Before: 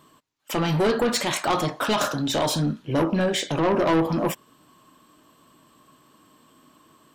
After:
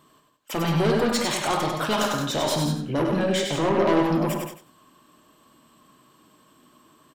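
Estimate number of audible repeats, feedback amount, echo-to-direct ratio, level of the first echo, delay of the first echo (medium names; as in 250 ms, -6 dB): 5, no regular repeats, -2.0 dB, -13.5 dB, 52 ms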